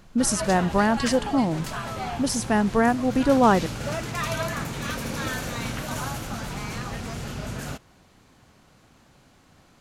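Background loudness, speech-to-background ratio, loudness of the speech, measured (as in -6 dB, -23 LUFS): -31.5 LUFS, 9.0 dB, -22.5 LUFS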